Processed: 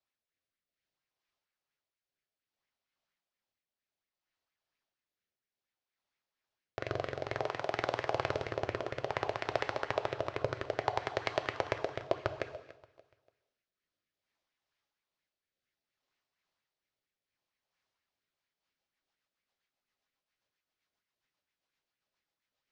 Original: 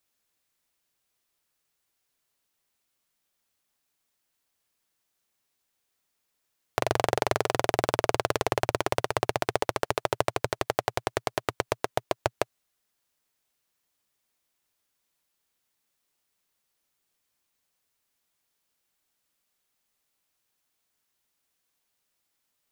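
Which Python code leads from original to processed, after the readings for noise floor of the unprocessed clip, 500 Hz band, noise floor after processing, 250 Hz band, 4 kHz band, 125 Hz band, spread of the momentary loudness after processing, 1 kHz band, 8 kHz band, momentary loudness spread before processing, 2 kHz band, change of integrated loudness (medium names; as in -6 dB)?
-79 dBFS, -6.5 dB, under -85 dBFS, -8.0 dB, -9.0 dB, -7.0 dB, 4 LU, -8.0 dB, -18.0 dB, 5 LU, -6.0 dB, -7.0 dB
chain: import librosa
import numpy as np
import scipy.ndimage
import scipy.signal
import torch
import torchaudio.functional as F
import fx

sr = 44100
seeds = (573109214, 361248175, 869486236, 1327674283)

y = scipy.signal.sosfilt(scipy.signal.butter(4, 5400.0, 'lowpass', fs=sr, output='sos'), x)
y = fx.rider(y, sr, range_db=10, speed_s=0.5)
y = fx.rotary_switch(y, sr, hz=0.6, then_hz=7.5, switch_at_s=17.99)
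y = y * (1.0 - 0.37 / 2.0 + 0.37 / 2.0 * np.cos(2.0 * np.pi * 2.3 * (np.arange(len(y)) / sr)))
y = fx.echo_feedback(y, sr, ms=289, feedback_pct=35, wet_db=-18.0)
y = fx.rev_gated(y, sr, seeds[0], gate_ms=350, shape='falling', drr_db=7.0)
y = fx.bell_lfo(y, sr, hz=4.3, low_hz=600.0, high_hz=2200.0, db=8)
y = y * librosa.db_to_amplitude(-5.5)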